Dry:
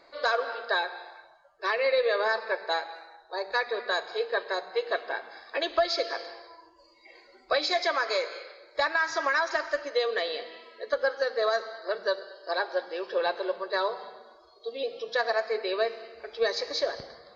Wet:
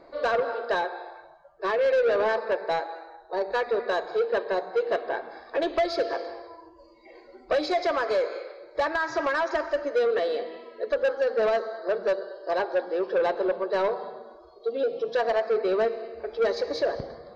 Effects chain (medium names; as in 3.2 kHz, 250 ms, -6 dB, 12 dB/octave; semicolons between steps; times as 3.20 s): tilt shelf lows +9.5 dB, about 1.1 kHz; saturation -21 dBFS, distortion -11 dB; trim +2.5 dB